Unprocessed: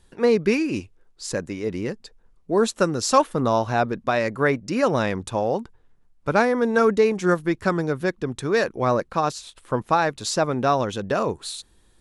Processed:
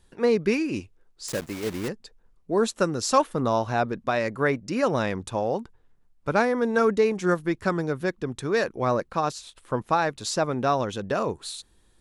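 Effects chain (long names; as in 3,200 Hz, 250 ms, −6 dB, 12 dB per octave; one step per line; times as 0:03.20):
0:01.28–0:01.90: one scale factor per block 3 bits
level −3 dB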